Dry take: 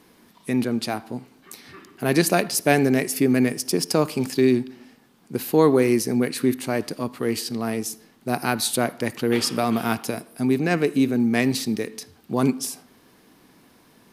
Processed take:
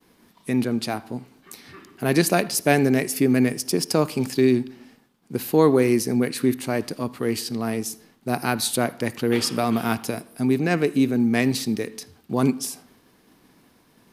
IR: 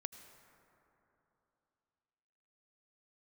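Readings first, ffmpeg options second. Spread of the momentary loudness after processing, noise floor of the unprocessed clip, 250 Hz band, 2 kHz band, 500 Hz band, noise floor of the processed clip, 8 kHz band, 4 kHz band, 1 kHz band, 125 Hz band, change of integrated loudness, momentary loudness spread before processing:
12 LU, -56 dBFS, 0.0 dB, -0.5 dB, 0.0 dB, -59 dBFS, -0.5 dB, -0.5 dB, -0.5 dB, +1.0 dB, 0.0 dB, 12 LU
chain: -filter_complex "[0:a]agate=range=-33dB:threshold=-51dB:ratio=3:detection=peak,asplit=2[a][b];[1:a]atrim=start_sample=2205,atrim=end_sample=3969,lowshelf=f=150:g=9[c];[b][c]afir=irnorm=-1:irlink=0,volume=-2.5dB[d];[a][d]amix=inputs=2:normalize=0,volume=-4dB"

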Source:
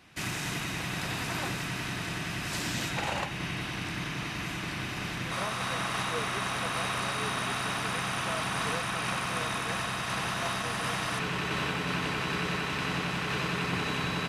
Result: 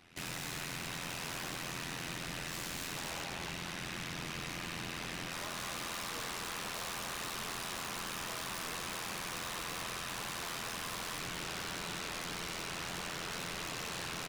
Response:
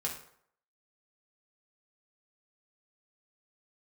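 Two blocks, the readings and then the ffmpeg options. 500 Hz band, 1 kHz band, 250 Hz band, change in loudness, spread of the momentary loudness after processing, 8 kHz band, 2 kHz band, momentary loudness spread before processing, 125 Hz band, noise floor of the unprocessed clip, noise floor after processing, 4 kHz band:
-9.0 dB, -9.5 dB, -10.5 dB, -7.5 dB, 1 LU, -2.5 dB, -9.0 dB, 4 LU, -12.5 dB, -36 dBFS, -42 dBFS, -6.0 dB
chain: -filter_complex "[0:a]asplit=2[a][b];[b]aecho=0:1:90|219|247:0.398|0.266|0.473[c];[a][c]amix=inputs=2:normalize=0,tremolo=f=85:d=0.947,bandreject=f=1.1k:w=26,aeval=exprs='0.0188*(abs(mod(val(0)/0.0188+3,4)-2)-1)':c=same"

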